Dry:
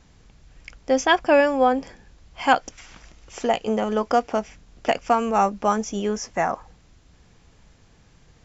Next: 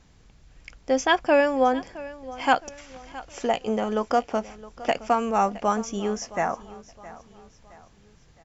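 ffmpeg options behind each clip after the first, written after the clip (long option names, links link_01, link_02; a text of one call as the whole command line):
ffmpeg -i in.wav -af "aecho=1:1:666|1332|1998:0.126|0.0529|0.0222,volume=-2.5dB" out.wav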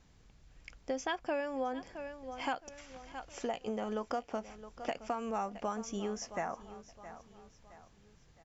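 ffmpeg -i in.wav -af "acompressor=threshold=-26dB:ratio=4,volume=-7dB" out.wav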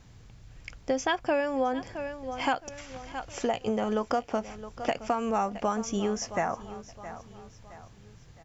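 ffmpeg -i in.wav -af "equalizer=frequency=110:width_type=o:width=0.52:gain=10.5,volume=8dB" out.wav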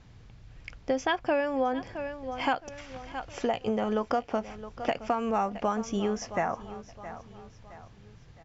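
ffmpeg -i in.wav -af "lowpass=4800" out.wav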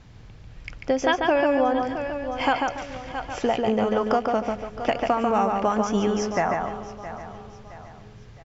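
ffmpeg -i in.wav -filter_complex "[0:a]asplit=2[link_01][link_02];[link_02]adelay=143,lowpass=frequency=4200:poles=1,volume=-3.5dB,asplit=2[link_03][link_04];[link_04]adelay=143,lowpass=frequency=4200:poles=1,volume=0.3,asplit=2[link_05][link_06];[link_06]adelay=143,lowpass=frequency=4200:poles=1,volume=0.3,asplit=2[link_07][link_08];[link_08]adelay=143,lowpass=frequency=4200:poles=1,volume=0.3[link_09];[link_01][link_03][link_05][link_07][link_09]amix=inputs=5:normalize=0,volume=5dB" out.wav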